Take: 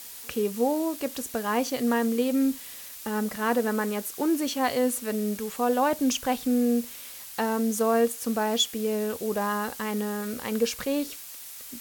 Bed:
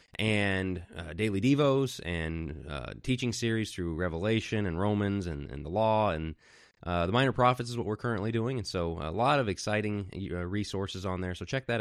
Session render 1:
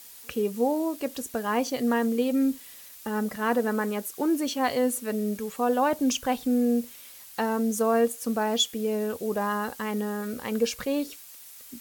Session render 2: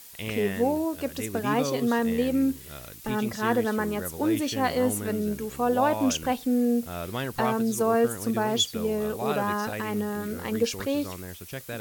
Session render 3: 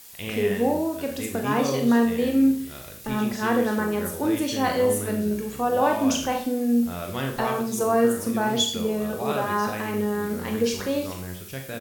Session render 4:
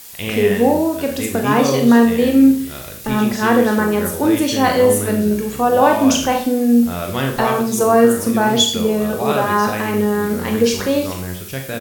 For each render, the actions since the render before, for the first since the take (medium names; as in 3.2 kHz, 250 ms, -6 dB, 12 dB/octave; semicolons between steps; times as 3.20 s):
noise reduction 6 dB, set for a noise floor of -42 dBFS
add bed -5.5 dB
doubling 22 ms -11 dB; Schroeder reverb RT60 0.47 s, combs from 30 ms, DRR 3.5 dB
trim +8.5 dB; peak limiter -1 dBFS, peak gain reduction 1 dB